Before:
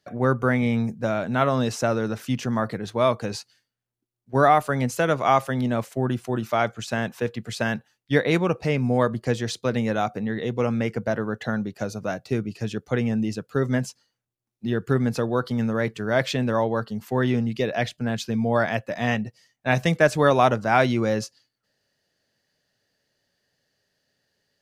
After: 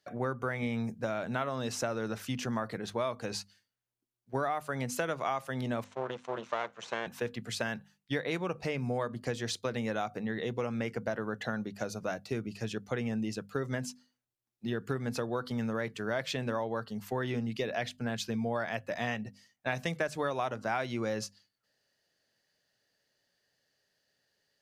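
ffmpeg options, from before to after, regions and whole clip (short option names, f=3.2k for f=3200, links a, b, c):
-filter_complex "[0:a]asettb=1/sr,asplit=3[a][b][c];[a]atrim=end=5.844[d];[b]atrim=start=5.84:end=7.07,asetpts=PTS-STARTPTS,afade=t=in:d=0.004:c=qsin,afade=t=out:st=1.226:d=0.004:c=qsin,aeval=exprs='max(val(0),0)':c=same,highpass=200,equalizer=f=270:t=q:w=4:g=-10,equalizer=f=500:t=q:w=4:g=5,equalizer=f=1k:t=q:w=4:g=6,equalizer=f=4.9k:t=q:w=4:g=-7,lowpass=f=6.4k:w=0.5412,lowpass=f=6.4k:w=1.3066[e];[c]atrim=start=7.066[f];[d][e]acrossfade=d=0.004:c1=hsin:c2=qsin[g];[g][f]acrossfade=d=0.004:c1=qsin:c2=hsin,lowshelf=f=420:g=-5,bandreject=f=50:t=h:w=6,bandreject=f=100:t=h:w=6,bandreject=f=150:t=h:w=6,bandreject=f=200:t=h:w=6,bandreject=f=250:t=h:w=6,acompressor=threshold=-26dB:ratio=6,volume=-3dB"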